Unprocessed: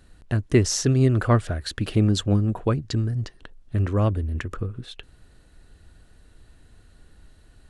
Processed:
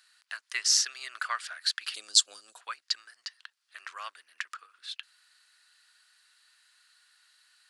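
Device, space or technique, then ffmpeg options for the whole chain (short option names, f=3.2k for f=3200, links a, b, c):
headphones lying on a table: -filter_complex "[0:a]highpass=f=1.3k:w=0.5412,highpass=f=1.3k:w=1.3066,equalizer=f=4.7k:t=o:w=0.38:g=8,asettb=1/sr,asplit=3[a][b][c];[a]atrim=end=1.944[d];[b]atrim=start=1.94:end=2.61,asetpts=PTS-STARTPTS,afade=t=in:d=0.004:c=qsin,afade=t=out:st=0.666:d=0.004:c=qsin,equalizer=f=125:t=o:w=1:g=5,equalizer=f=250:t=o:w=1:g=8,equalizer=f=500:t=o:w=1:g=7,equalizer=f=1k:t=o:w=1:g=-7,equalizer=f=2k:t=o:w=1:g=-11,equalizer=f=4k:t=o:w=1:g=5,equalizer=f=8k:t=o:w=1:g=12[e];[c]atrim=start=2.606[f];[d][e]acrossfade=d=0.004:c1=hsin:c2=qsin[g];[g][f]acrossfade=d=0.004:c1=qsin:c2=hsin"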